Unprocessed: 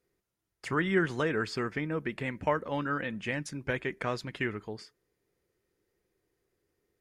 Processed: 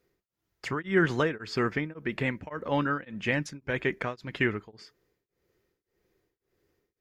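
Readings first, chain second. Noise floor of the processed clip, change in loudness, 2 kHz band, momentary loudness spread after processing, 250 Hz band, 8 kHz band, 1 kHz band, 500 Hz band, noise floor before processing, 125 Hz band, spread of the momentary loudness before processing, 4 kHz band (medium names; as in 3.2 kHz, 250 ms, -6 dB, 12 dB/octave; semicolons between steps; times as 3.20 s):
under -85 dBFS, +2.5 dB, +3.0 dB, 10 LU, +2.5 dB, -0.5 dB, +1.0 dB, +2.0 dB, -85 dBFS, +2.5 dB, 7 LU, +2.5 dB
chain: peaking EQ 9.3 kHz -11 dB 0.48 oct; tremolo of two beating tones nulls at 1.8 Hz; trim +6 dB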